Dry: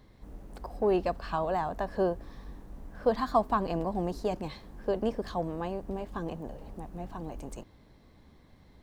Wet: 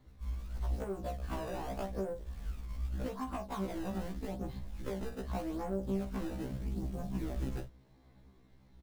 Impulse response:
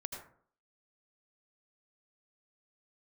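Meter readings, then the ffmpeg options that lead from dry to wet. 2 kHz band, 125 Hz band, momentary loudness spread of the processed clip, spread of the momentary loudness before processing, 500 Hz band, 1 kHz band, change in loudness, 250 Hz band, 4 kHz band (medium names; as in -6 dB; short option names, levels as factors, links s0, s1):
-7.0 dB, +1.0 dB, 6 LU, 20 LU, -10.0 dB, -11.5 dB, -7.5 dB, -3.5 dB, -6.0 dB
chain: -filter_complex "[0:a]afwtdn=0.0178,acompressor=threshold=0.0126:ratio=8,aresample=16000,asoftclip=type=tanh:threshold=0.0126,aresample=44100[s0];[1:a]atrim=start_sample=2205,atrim=end_sample=3528,asetrate=74970,aresample=44100[s1];[s0][s1]afir=irnorm=-1:irlink=0,asplit=2[s2][s3];[s3]acrusher=samples=23:mix=1:aa=0.000001:lfo=1:lforange=36.8:lforate=0.83,volume=0.668[s4];[s2][s4]amix=inputs=2:normalize=0,acrossover=split=160[s5][s6];[s6]acompressor=threshold=0.00224:ratio=4[s7];[s5][s7]amix=inputs=2:normalize=0,acrusher=bits=8:mode=log:mix=0:aa=0.000001,afftfilt=real='re*1.73*eq(mod(b,3),0)':imag='im*1.73*eq(mod(b,3),0)':win_size=2048:overlap=0.75,volume=7.5"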